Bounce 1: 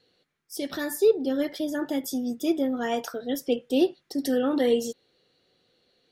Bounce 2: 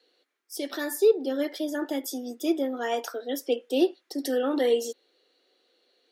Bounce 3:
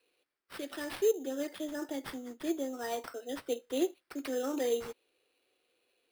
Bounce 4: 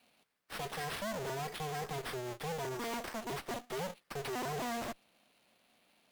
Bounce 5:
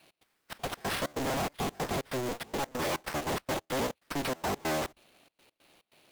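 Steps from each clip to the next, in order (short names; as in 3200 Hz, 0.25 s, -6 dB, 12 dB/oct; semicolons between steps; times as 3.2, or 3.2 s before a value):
steep high-pass 280 Hz 36 dB/oct
sample-rate reducer 6800 Hz, jitter 0%; gain -8 dB
cycle switcher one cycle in 2, inverted; tube stage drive 44 dB, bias 0.45; gain +7.5 dB
cycle switcher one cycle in 3, inverted; step gate "x.xxx.x.x" 142 bpm -24 dB; gain +7.5 dB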